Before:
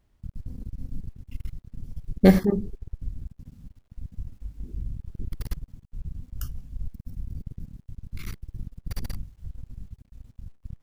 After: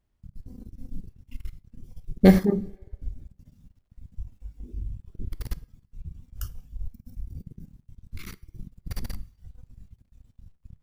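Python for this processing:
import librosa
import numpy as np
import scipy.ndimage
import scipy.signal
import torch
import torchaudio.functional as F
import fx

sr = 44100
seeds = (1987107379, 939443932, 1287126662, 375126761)

y = fx.rev_double_slope(x, sr, seeds[0], early_s=0.45, late_s=2.0, knee_db=-17, drr_db=17.5)
y = fx.noise_reduce_blind(y, sr, reduce_db=8)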